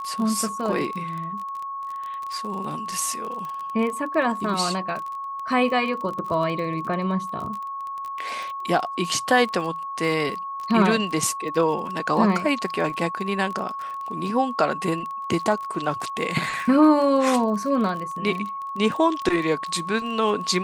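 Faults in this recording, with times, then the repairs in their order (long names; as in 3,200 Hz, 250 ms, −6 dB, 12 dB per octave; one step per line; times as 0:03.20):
surface crackle 25 per second −29 dBFS
whistle 1,100 Hz −29 dBFS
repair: click removal
notch filter 1,100 Hz, Q 30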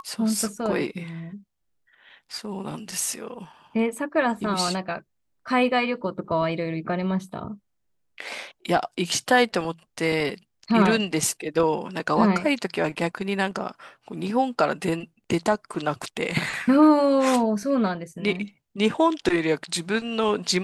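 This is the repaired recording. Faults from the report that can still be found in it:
none of them is left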